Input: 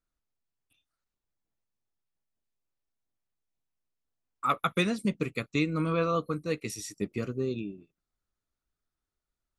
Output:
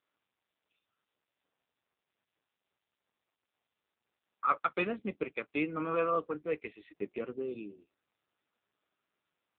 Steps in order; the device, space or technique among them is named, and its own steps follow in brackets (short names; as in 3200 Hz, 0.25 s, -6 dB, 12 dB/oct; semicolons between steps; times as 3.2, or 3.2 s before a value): telephone (BPF 350–3000 Hz; AMR-NB 5.9 kbps 8000 Hz)